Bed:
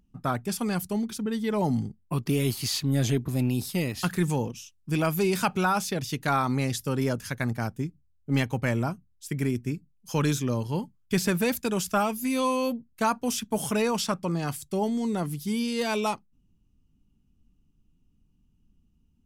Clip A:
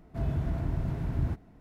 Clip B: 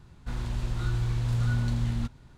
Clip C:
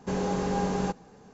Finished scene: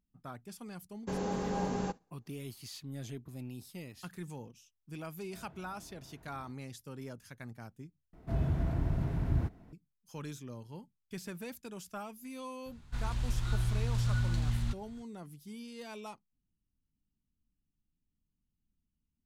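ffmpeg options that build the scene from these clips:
-filter_complex "[1:a]asplit=2[s0][s1];[0:a]volume=0.126[s2];[3:a]agate=range=0.0224:threshold=0.00891:ratio=3:release=100:detection=peak[s3];[s0]bass=f=250:g=-13,treble=f=4000:g=-5[s4];[2:a]equalizer=f=360:w=0.44:g=-8.5[s5];[s2]asplit=2[s6][s7];[s6]atrim=end=8.134[s8];[s1]atrim=end=1.6,asetpts=PTS-STARTPTS,volume=0.891[s9];[s7]atrim=start=9.726[s10];[s3]atrim=end=1.33,asetpts=PTS-STARTPTS,volume=0.473,afade=t=in:d=0.004:c=hsin,afade=t=out:st=1.326:d=0.004:c=hsin,adelay=1000[s11];[s4]atrim=end=1.6,asetpts=PTS-STARTPTS,volume=0.133,afade=t=in:d=0.004:c=hsin,afade=t=out:st=1.596:d=0.004:c=hsin,adelay=227997S[s12];[s5]atrim=end=2.37,asetpts=PTS-STARTPTS,volume=0.891,afade=t=in:d=0.004:c=hsin,afade=t=out:st=2.366:d=0.004:c=hsin,adelay=12660[s13];[s8][s9]acrossfade=d=0.004:c1=hsin:c2=hsin[s14];[s14][s10]acrossfade=d=0.004:c1=hsin:c2=hsin[s15];[s15][s11][s12][s13]amix=inputs=4:normalize=0"

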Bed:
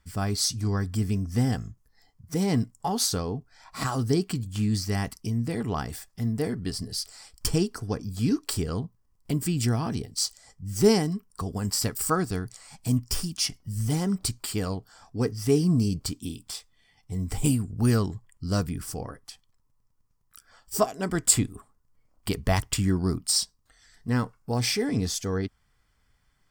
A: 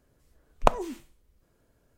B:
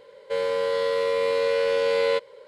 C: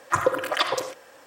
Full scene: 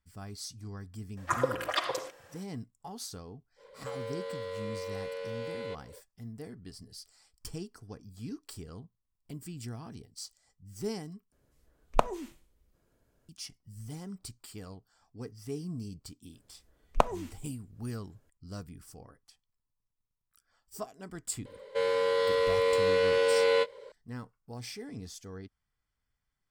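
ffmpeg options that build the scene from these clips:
-filter_complex "[2:a]asplit=2[s0][s1];[1:a]asplit=2[s2][s3];[0:a]volume=0.158[s4];[s0]acompressor=threshold=0.0398:ratio=6:attack=3.2:release=140:knee=1:detection=peak[s5];[s1]asplit=2[s6][s7];[s7]adelay=19,volume=0.299[s8];[s6][s8]amix=inputs=2:normalize=0[s9];[s4]asplit=2[s10][s11];[s10]atrim=end=11.324[s12];[s2]atrim=end=1.97,asetpts=PTS-STARTPTS,volume=0.631[s13];[s11]atrim=start=13.286[s14];[3:a]atrim=end=1.26,asetpts=PTS-STARTPTS,volume=0.447,afade=t=in:d=0.004:c=hsin,afade=t=out:st=1.256:d=0.004:c=hsin,adelay=1170[s15];[s5]atrim=end=2.47,asetpts=PTS-STARTPTS,volume=0.422,afade=t=in:d=0.05,afade=t=out:st=2.42:d=0.05,adelay=3560[s16];[s3]atrim=end=1.97,asetpts=PTS-STARTPTS,volume=0.668,afade=t=in:d=0.004:c=hsin,afade=t=out:st=1.966:d=0.004:c=hsin,adelay=16330[s17];[s9]atrim=end=2.47,asetpts=PTS-STARTPTS,volume=0.794,afade=t=in:d=0.004:c=hsin,afade=t=out:st=2.466:d=0.004:c=hsin,adelay=21450[s18];[s12][s13]acrossfade=d=0.004:c1=hsin:c2=hsin[s19];[s19][s14]acrossfade=d=0.004:c1=hsin:c2=hsin[s20];[s20][s15][s16][s17][s18]amix=inputs=5:normalize=0"

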